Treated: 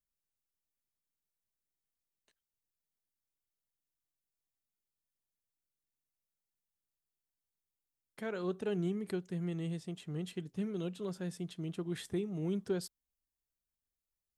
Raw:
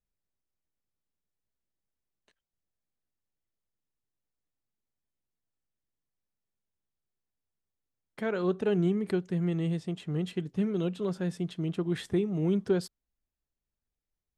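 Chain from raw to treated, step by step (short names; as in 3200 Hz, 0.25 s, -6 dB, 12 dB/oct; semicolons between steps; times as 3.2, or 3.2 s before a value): high shelf 5700 Hz +11.5 dB; gain -8 dB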